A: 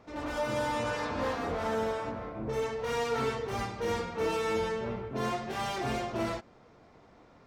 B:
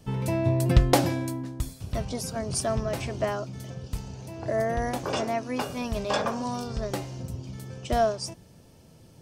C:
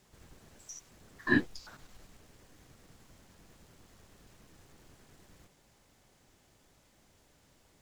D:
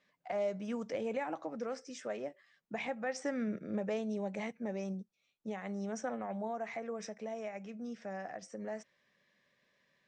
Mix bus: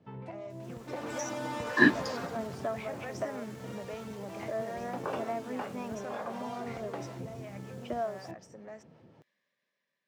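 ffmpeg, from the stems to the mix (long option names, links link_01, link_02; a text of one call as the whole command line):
ffmpeg -i stem1.wav -i stem2.wav -i stem3.wav -i stem4.wav -filter_complex "[0:a]acompressor=threshold=-40dB:ratio=6,adelay=800,afade=type=out:start_time=2.1:duration=0.38:silence=0.251189[link_01];[1:a]lowpass=1800,acompressor=threshold=-30dB:ratio=6,acrossover=split=530[link_02][link_03];[link_02]aeval=exprs='val(0)*(1-0.5/2+0.5/2*cos(2*PI*5.4*n/s))':channel_layout=same[link_04];[link_03]aeval=exprs='val(0)*(1-0.5/2-0.5/2*cos(2*PI*5.4*n/s))':channel_layout=same[link_05];[link_04][link_05]amix=inputs=2:normalize=0,volume=-3.5dB[link_06];[2:a]adelay=500,volume=0.5dB[link_07];[3:a]aeval=exprs='if(lt(val(0),0),0.708*val(0),val(0))':channel_layout=same,volume=-9.5dB,asplit=2[link_08][link_09];[link_09]apad=whole_len=406600[link_10];[link_06][link_10]sidechaincompress=threshold=-48dB:ratio=8:attack=9.1:release=169[link_11];[link_01][link_11][link_07][link_08]amix=inputs=4:normalize=0,dynaudnorm=framelen=310:gausssize=7:maxgain=6dB,highpass=120,lowshelf=frequency=160:gain=-6.5" out.wav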